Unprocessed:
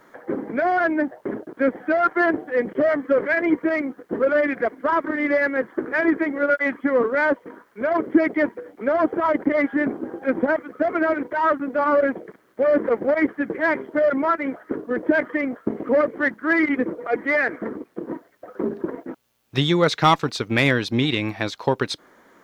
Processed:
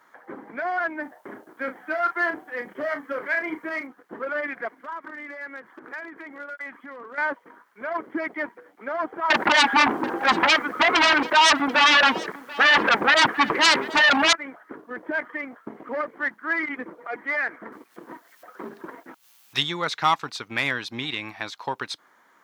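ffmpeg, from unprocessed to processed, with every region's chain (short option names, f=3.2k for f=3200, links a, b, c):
-filter_complex "[0:a]asettb=1/sr,asplit=3[a][b][c];[a]atrim=end=1.024[d];[b]atrim=start=1.02:end=3.87,asetpts=PTS-STARTPTS,afade=t=in:d=0.004:c=qsin,afade=t=out:st=2.846:d=0.004:c=qsin,aemphasis=mode=production:type=cd,asplit=2[e][f];[f]adelay=35,volume=-8.5dB[g];[e][g]amix=inputs=2:normalize=0,atrim=end_sample=125685[h];[c]atrim=start=3.866[i];[d][h]acrossfade=d=0.004:c1=hsin:c2=qsin[j];[j][i]acrossfade=d=0.004:c1=qsin:c2=hsin,asettb=1/sr,asplit=3[k][l][m];[k]atrim=end=4.734[n];[l]atrim=start=4.73:end=7.18,asetpts=PTS-STARTPTS,afade=t=in:d=0.004:c=qsin,afade=t=out:st=2.446:d=0.004:c=qsin,acompressor=threshold=-26dB:ratio=8:attack=3.2:release=140:knee=1:detection=peak,volume=23dB,asoftclip=hard,volume=-23dB[o];[m]atrim=start=7.176[p];[n][o]acrossfade=d=0.004:c1=hsin:c2=qsin[q];[q][p]acrossfade=d=0.004:c1=qsin:c2=hsin,asettb=1/sr,asplit=3[r][s][t];[r]atrim=end=9.304[u];[s]atrim=start=9.3:end=14.33,asetpts=PTS-STARTPTS,afade=t=in:d=0.004:c=qsin,afade=t=out:st=5.026:d=0.004:c=qsin,aeval=exprs='0.398*sin(PI/2*5.01*val(0)/0.398)':c=same,aecho=1:1:736:0.106,atrim=end_sample=221823[v];[t]atrim=start=14.326[w];[u][v]acrossfade=d=0.004:c1=hsin:c2=qsin[x];[x][w]acrossfade=d=0.004:c1=qsin:c2=hsin,asettb=1/sr,asplit=3[y][z][aa];[y]atrim=end=17.724[ab];[z]atrim=start=17.72:end=19.63,asetpts=PTS-STARTPTS,afade=t=in:d=0.004:c=qsin,afade=t=out:st=1.906:d=0.004:c=qsin,highshelf=f=2k:g=11,acompressor=mode=upward:threshold=-40dB:ratio=2.5:attack=3.2:release=140:knee=2.83:detection=peak[ac];[aa]atrim=start=19.626[ad];[ab][ac]acrossfade=d=0.004:c1=hsin:c2=qsin[ae];[ae][ad]acrossfade=d=0.004:c1=qsin:c2=hsin,highpass=f=150:p=1,lowshelf=f=680:t=q:w=1.5:g=-7,volume=-4.5dB"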